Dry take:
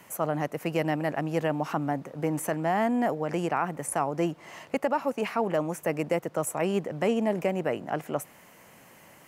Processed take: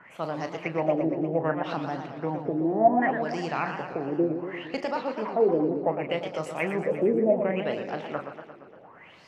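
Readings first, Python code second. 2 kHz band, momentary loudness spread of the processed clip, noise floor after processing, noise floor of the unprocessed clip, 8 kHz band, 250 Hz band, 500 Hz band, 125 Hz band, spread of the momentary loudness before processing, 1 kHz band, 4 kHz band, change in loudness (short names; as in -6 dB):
+1.0 dB, 11 LU, -51 dBFS, -54 dBFS, under -15 dB, +1.0 dB, +2.5 dB, -2.0 dB, 6 LU, +1.0 dB, 0.0 dB, +1.5 dB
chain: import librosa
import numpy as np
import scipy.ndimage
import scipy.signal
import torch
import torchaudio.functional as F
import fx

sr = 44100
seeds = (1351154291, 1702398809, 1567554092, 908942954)

y = fx.doubler(x, sr, ms=37.0, db=-10)
y = fx.filter_lfo_lowpass(y, sr, shape='sine', hz=0.67, low_hz=350.0, high_hz=5200.0, q=6.3)
y = fx.echo_warbled(y, sr, ms=116, feedback_pct=65, rate_hz=2.8, cents=194, wet_db=-8.0)
y = y * librosa.db_to_amplitude(-4.0)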